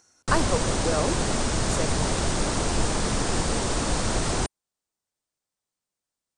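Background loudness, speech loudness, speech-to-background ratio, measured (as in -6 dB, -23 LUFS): -26.0 LUFS, -31.0 LUFS, -5.0 dB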